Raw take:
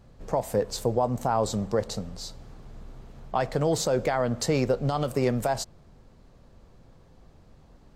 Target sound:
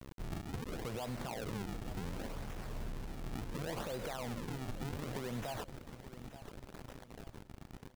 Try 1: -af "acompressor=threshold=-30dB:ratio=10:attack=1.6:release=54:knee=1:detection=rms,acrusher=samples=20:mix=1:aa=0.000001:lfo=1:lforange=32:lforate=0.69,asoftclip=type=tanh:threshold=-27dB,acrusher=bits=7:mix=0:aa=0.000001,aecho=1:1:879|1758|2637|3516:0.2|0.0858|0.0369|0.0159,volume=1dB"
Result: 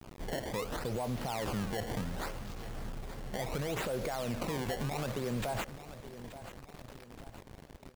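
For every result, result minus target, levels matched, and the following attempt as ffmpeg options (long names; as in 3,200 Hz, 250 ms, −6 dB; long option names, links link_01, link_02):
downward compressor: peak gain reduction −7 dB; sample-and-hold swept by an LFO: distortion −4 dB
-af "acompressor=threshold=-37.5dB:ratio=10:attack=1.6:release=54:knee=1:detection=rms,acrusher=samples=20:mix=1:aa=0.000001:lfo=1:lforange=32:lforate=0.69,asoftclip=type=tanh:threshold=-27dB,acrusher=bits=7:mix=0:aa=0.000001,aecho=1:1:879|1758|2637|3516:0.2|0.0858|0.0369|0.0159,volume=1dB"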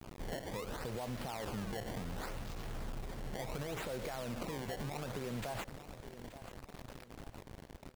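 sample-and-hold swept by an LFO: distortion −5 dB
-af "acompressor=threshold=-37.5dB:ratio=10:attack=1.6:release=54:knee=1:detection=rms,acrusher=samples=49:mix=1:aa=0.000001:lfo=1:lforange=78.4:lforate=0.69,asoftclip=type=tanh:threshold=-27dB,acrusher=bits=7:mix=0:aa=0.000001,aecho=1:1:879|1758|2637|3516:0.2|0.0858|0.0369|0.0159,volume=1dB"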